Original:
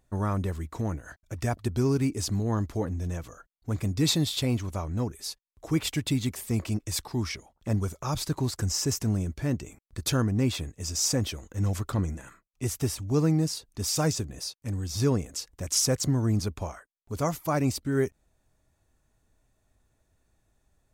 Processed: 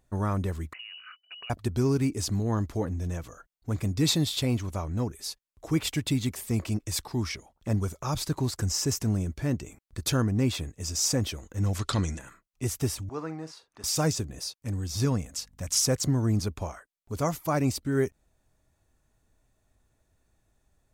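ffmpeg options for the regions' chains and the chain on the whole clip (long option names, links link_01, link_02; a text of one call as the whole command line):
ffmpeg -i in.wav -filter_complex "[0:a]asettb=1/sr,asplit=3[link_01][link_02][link_03];[link_01]atrim=end=0.734[link_04];[link_02]atrim=start=0.73:end=1.5,asetpts=PTS-STARTPTS,afade=type=in:duration=0.004:curve=qsin,afade=type=out:start_time=0.766:duration=0.004:curve=qsin,lowpass=frequency=2600:width_type=q:width=0.5098,lowpass=frequency=2600:width_type=q:width=0.6013,lowpass=frequency=2600:width_type=q:width=0.9,lowpass=frequency=2600:width_type=q:width=2.563,afreqshift=-3000,acompressor=threshold=-41dB:ratio=5:attack=3.2:release=140:knee=1:detection=peak[link_05];[link_03]atrim=start=1.496[link_06];[link_04][link_05]acrossfade=duration=0.004:curve1=hsin:curve2=qsin[link_07];[link_07][link_06]acrossfade=duration=0.004:curve1=qsin:curve2=hsin,asettb=1/sr,asplit=3[link_08][link_09][link_10];[link_08]atrim=end=11.794[link_11];[link_09]atrim=start=11.79:end=12.19,asetpts=PTS-STARTPTS,afade=type=in:duration=0.004:curve=qsin,afade=type=out:start_time=0.396:duration=0.004:curve=qsin,lowpass=frequency=11000:width=0.5412,lowpass=frequency=11000:width=1.3066,equalizer=frequency=4200:width=0.57:gain=15[link_12];[link_10]atrim=start=12.186[link_13];[link_11][link_12]acrossfade=duration=0.004:curve1=hsin:curve2=qsin[link_14];[link_14][link_13]acrossfade=duration=0.004:curve1=qsin:curve2=hsin,asettb=1/sr,asplit=3[link_15][link_16][link_17];[link_15]atrim=end=13.094[link_18];[link_16]atrim=start=13.09:end=13.84,asetpts=PTS-STARTPTS,afade=type=in:duration=0.004:curve=qsin,afade=type=out:start_time=0.746:duration=0.004:curve=qsin,asplit=2[link_19][link_20];[link_20]adelay=44,volume=-13.5dB[link_21];[link_19][link_21]amix=inputs=2:normalize=0,atrim=end_sample=33075,acompressor=mode=upward:threshold=-40dB:ratio=2.5:attack=3.2:release=140:knee=2.83:detection=peak,bandpass=frequency=1200:width_type=q:width=1.1[link_22];[link_17]atrim=start=13.836[link_23];[link_18][link_22]acrossfade=duration=0.004:curve1=hsin:curve2=qsin[link_24];[link_24][link_23]acrossfade=duration=0.004:curve1=qsin:curve2=hsin,asettb=1/sr,asplit=3[link_25][link_26][link_27];[link_25]atrim=end=15.054[link_28];[link_26]atrim=start=15.05:end=15.82,asetpts=PTS-STARTPTS,afade=type=in:duration=0.004:curve=qsin,afade=type=out:start_time=0.766:duration=0.004:curve=qsin,equalizer=frequency=380:width_type=o:width=0.52:gain=-11,aeval=exprs='val(0)+0.00112*(sin(2*PI*50*n/s)+sin(2*PI*2*50*n/s)/2+sin(2*PI*3*50*n/s)/3+sin(2*PI*4*50*n/s)/4+sin(2*PI*5*50*n/s)/5)':channel_layout=same[link_29];[link_27]atrim=start=15.816[link_30];[link_28][link_29]acrossfade=duration=0.004:curve1=hsin:curve2=qsin[link_31];[link_31][link_30]acrossfade=duration=0.004:curve1=qsin:curve2=hsin" out.wav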